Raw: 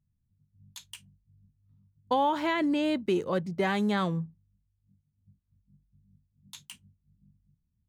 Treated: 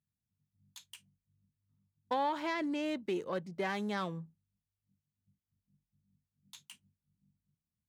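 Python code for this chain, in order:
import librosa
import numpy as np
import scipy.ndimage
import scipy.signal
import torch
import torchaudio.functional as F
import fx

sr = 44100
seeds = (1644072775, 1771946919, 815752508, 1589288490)

y = fx.self_delay(x, sr, depth_ms=0.065)
y = fx.highpass(y, sr, hz=260.0, slope=6)
y = y * 10.0 ** (-6.0 / 20.0)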